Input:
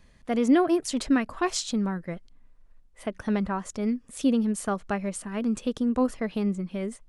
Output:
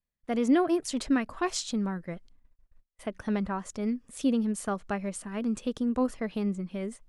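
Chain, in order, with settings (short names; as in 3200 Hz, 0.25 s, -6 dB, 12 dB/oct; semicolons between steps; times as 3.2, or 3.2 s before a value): gate -50 dBFS, range -31 dB; gain -3 dB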